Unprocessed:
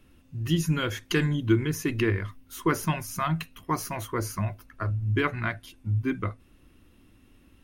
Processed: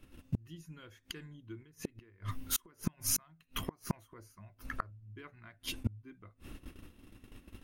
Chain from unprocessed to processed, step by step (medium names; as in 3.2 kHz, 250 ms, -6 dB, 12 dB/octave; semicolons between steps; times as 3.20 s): gate -54 dBFS, range -15 dB; 1.62–3.93 s: compression 6:1, threshold -34 dBFS, peak gain reduction 14.5 dB; inverted gate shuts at -30 dBFS, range -36 dB; trim +11 dB